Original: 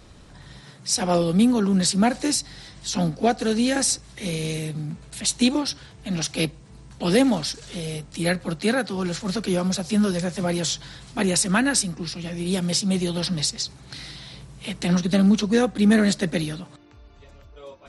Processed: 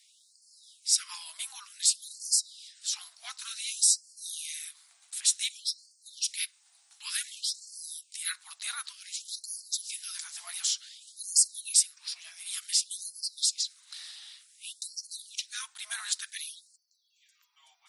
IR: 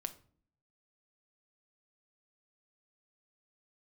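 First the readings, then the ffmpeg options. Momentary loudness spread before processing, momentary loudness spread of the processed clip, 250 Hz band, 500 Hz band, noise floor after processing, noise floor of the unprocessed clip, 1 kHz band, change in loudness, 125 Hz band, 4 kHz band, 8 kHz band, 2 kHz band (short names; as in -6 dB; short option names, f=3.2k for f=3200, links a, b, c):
13 LU, 17 LU, under -40 dB, under -40 dB, -66 dBFS, -48 dBFS, -22.0 dB, -7.5 dB, under -40 dB, -4.0 dB, 0.0 dB, -13.5 dB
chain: -af "aderivative,afreqshift=-180,afftfilt=real='re*gte(b*sr/1024,630*pow(4300/630,0.5+0.5*sin(2*PI*0.55*pts/sr)))':imag='im*gte(b*sr/1024,630*pow(4300/630,0.5+0.5*sin(2*PI*0.55*pts/sr)))':win_size=1024:overlap=0.75"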